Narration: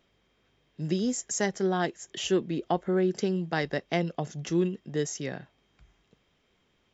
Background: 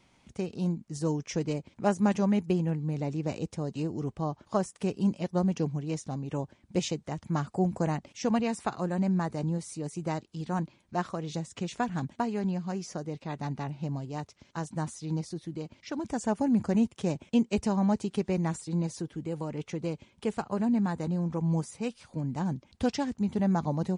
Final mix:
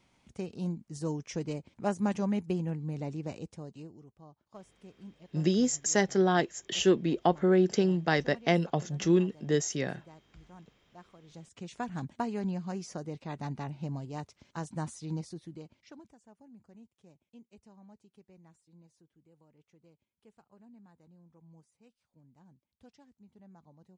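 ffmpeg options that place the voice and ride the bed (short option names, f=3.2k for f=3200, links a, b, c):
-filter_complex "[0:a]adelay=4550,volume=2dB[a];[1:a]volume=14.5dB,afade=t=out:st=3.09:d=0.96:silence=0.133352,afade=t=in:st=11.22:d=0.96:silence=0.112202,afade=t=out:st=15.02:d=1.14:silence=0.0473151[b];[a][b]amix=inputs=2:normalize=0"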